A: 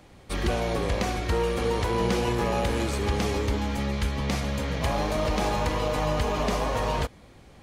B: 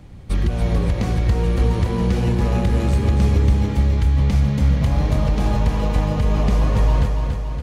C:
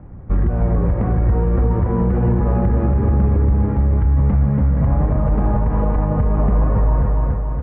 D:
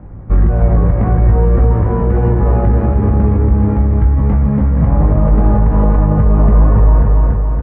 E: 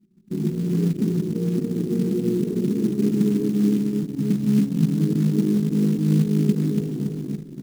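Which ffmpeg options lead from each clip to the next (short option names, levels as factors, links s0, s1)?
-filter_complex "[0:a]bass=f=250:g=15,treble=f=4000:g=-1,acompressor=threshold=0.178:ratio=6,asplit=2[s0][s1];[s1]aecho=0:1:283|566|849|1132|1415|1698|1981|2264:0.531|0.308|0.179|0.104|0.0601|0.0348|0.0202|0.0117[s2];[s0][s2]amix=inputs=2:normalize=0"
-af "lowpass=f=1500:w=0.5412,lowpass=f=1500:w=1.3066,alimiter=level_in=3.55:limit=0.891:release=50:level=0:latency=1,volume=0.422"
-filter_complex "[0:a]asplit=2[s0][s1];[s1]adelay=19,volume=0.562[s2];[s0][s2]amix=inputs=2:normalize=0,volume=1.5"
-af "asuperpass=centerf=250:order=12:qfactor=0.92,anlmdn=631,acrusher=bits=6:mode=log:mix=0:aa=0.000001,volume=0.841"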